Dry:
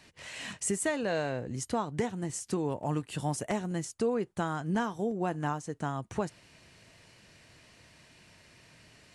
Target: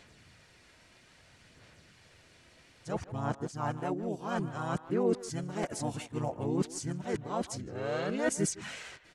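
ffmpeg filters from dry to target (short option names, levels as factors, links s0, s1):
-filter_complex "[0:a]areverse,aphaser=in_gain=1:out_gain=1:delay=3.1:decay=0.35:speed=0.6:type=sinusoidal,asplit=2[s0][s1];[s1]adelay=160,highpass=300,lowpass=3400,asoftclip=type=hard:threshold=0.0562,volume=0.2[s2];[s0][s2]amix=inputs=2:normalize=0,asplit=2[s3][s4];[s4]asetrate=35002,aresample=44100,atempo=1.25992,volume=0.794[s5];[s3][s5]amix=inputs=2:normalize=0,volume=0.596"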